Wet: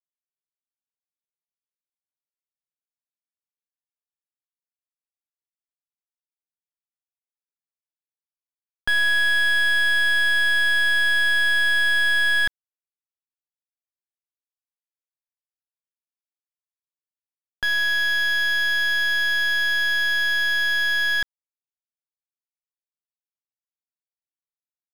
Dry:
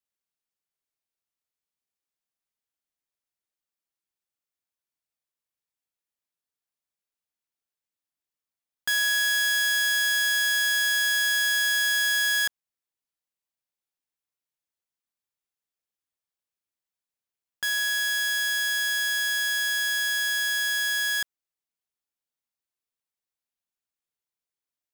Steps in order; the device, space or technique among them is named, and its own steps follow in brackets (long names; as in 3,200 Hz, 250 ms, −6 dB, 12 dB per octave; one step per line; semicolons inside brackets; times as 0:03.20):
early transistor amplifier (dead-zone distortion −59 dBFS; slew-rate limiting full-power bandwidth 170 Hz)
level +6.5 dB